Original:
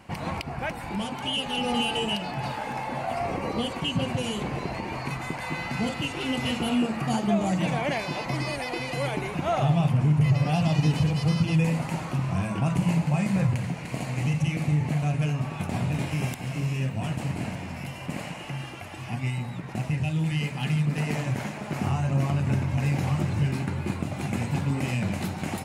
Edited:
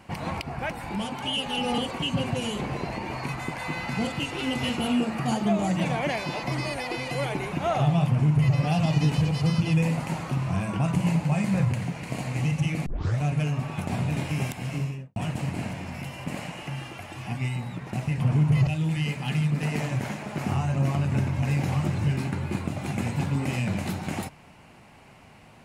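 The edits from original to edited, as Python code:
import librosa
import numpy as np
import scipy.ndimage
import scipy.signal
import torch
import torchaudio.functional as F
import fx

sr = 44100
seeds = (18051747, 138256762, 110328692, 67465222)

y = fx.studio_fade_out(x, sr, start_s=16.56, length_s=0.42)
y = fx.edit(y, sr, fx.cut(start_s=1.78, length_s=1.82),
    fx.duplicate(start_s=9.89, length_s=0.47, to_s=20.02),
    fx.tape_start(start_s=14.68, length_s=0.35), tone=tone)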